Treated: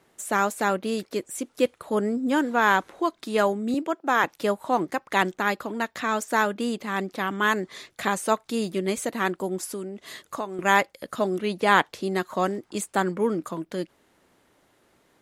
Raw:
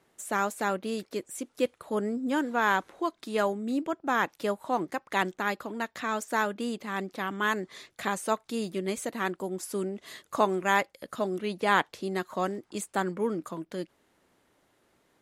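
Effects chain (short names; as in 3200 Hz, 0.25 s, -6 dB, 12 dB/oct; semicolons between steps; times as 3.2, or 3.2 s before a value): 3.74–4.24 HPF 280 Hz 12 dB/oct; 9.65–10.59 compressor 2.5:1, threshold -39 dBFS, peak gain reduction 14 dB; gain +5 dB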